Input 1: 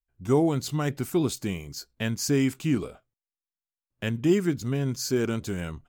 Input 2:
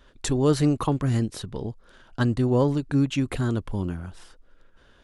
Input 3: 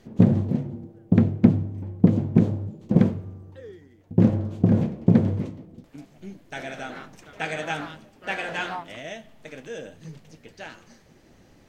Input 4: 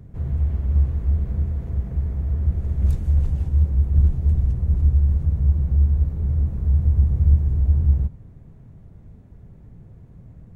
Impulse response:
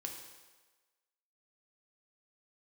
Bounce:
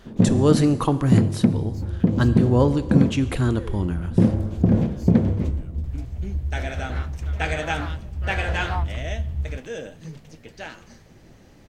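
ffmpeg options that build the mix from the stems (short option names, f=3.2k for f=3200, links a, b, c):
-filter_complex "[0:a]acompressor=threshold=-33dB:ratio=6,volume=-15dB[a];[1:a]volume=0.5dB,asplit=2[b][c];[c]volume=-4dB[d];[2:a]volume=3dB[e];[3:a]adelay=1500,volume=-10dB[f];[4:a]atrim=start_sample=2205[g];[d][g]afir=irnorm=-1:irlink=0[h];[a][b][e][f][h]amix=inputs=5:normalize=0,alimiter=limit=-4.5dB:level=0:latency=1:release=270"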